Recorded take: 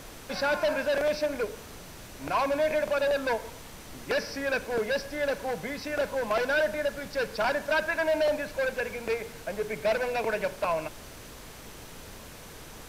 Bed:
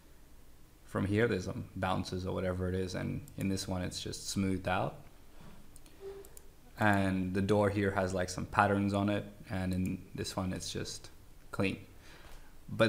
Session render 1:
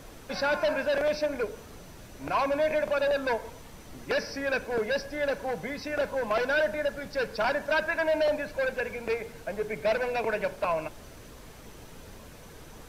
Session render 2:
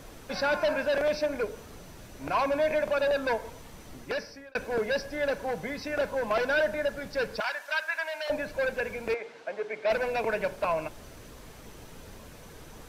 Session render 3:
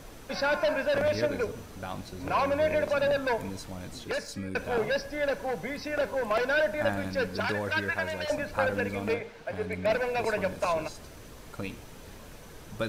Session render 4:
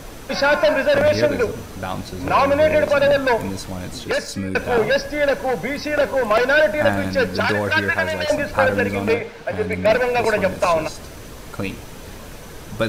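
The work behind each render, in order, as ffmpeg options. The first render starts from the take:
-af "afftdn=nr=6:nf=-46"
-filter_complex "[0:a]asettb=1/sr,asplit=3[s0][s1][s2];[s0]atrim=end=7.404[s3];[s1]atrim=start=7.4:end=8.3,asetpts=PTS-STARTPTS,afade=t=in:d=0.004:c=qsin,afade=t=out:st=0.896:d=0.004:c=qsin,highpass=1200[s4];[s2]atrim=start=8.296[s5];[s3][s4]acrossfade=d=0.004:c1=hsin:c2=qsin[s6];[s6][s5]acrossfade=d=0.004:c1=qsin:c2=hsin,asettb=1/sr,asplit=3[s7][s8][s9];[s7]atrim=end=9.144[s10];[s8]atrim=start=9.14:end=9.9,asetpts=PTS-STARTPTS,afade=t=in:d=0.004:c=qsin,afade=t=out:st=0.756:d=0.004:c=qsin,highpass=390,lowpass=4600[s11];[s9]atrim=start=9.896[s12];[s10][s11]acrossfade=d=0.004:c1=hsin:c2=qsin[s13];[s13][s12]acrossfade=d=0.004:c1=qsin:c2=hsin,asplit=2[s14][s15];[s14]atrim=end=4.55,asetpts=PTS-STARTPTS,afade=t=out:st=3.9:d=0.65[s16];[s15]atrim=start=4.55,asetpts=PTS-STARTPTS,afade=t=in:d=0.004:c=hsin[s17];[s16][s17]concat=n=2:v=0:a=1"
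-filter_complex "[1:a]volume=0.596[s0];[0:a][s0]amix=inputs=2:normalize=0"
-af "volume=3.35"

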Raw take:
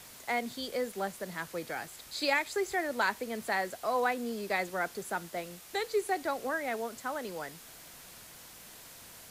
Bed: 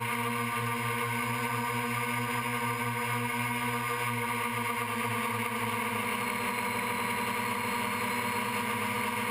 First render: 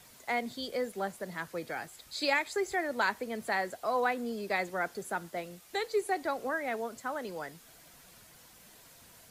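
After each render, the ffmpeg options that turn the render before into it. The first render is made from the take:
-af "afftdn=nr=7:nf=-51"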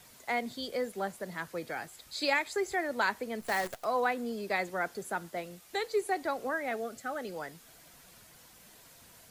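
-filter_complex "[0:a]asplit=3[s0][s1][s2];[s0]afade=t=out:st=3.4:d=0.02[s3];[s1]acrusher=bits=7:dc=4:mix=0:aa=0.000001,afade=t=in:st=3.4:d=0.02,afade=t=out:st=3.83:d=0.02[s4];[s2]afade=t=in:st=3.83:d=0.02[s5];[s3][s4][s5]amix=inputs=3:normalize=0,asettb=1/sr,asplit=3[s6][s7][s8];[s6]atrim=end=6.714[s9];[s7]atrim=start=6.71:end=7.34,asetpts=PTS-STARTPTS,afade=t=in:d=0.004:c=qsin,afade=t=out:st=0.626:d=0.004:c=qsin,asuperstop=centerf=990:order=12:qfactor=4.6[s10];[s8]atrim=start=7.336[s11];[s9][s10]acrossfade=d=0.004:c1=hsin:c2=qsin[s12];[s12][s11]acrossfade=d=0.004:c1=qsin:c2=hsin"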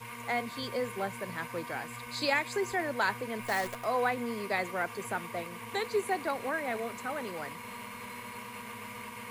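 -filter_complex "[1:a]volume=0.251[s0];[0:a][s0]amix=inputs=2:normalize=0"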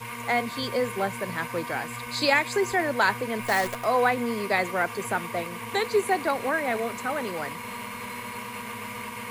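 -af "volume=2.24"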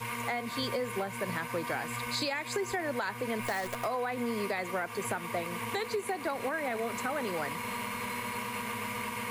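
-af "alimiter=limit=0.112:level=0:latency=1:release=261,acompressor=threshold=0.0355:ratio=6"

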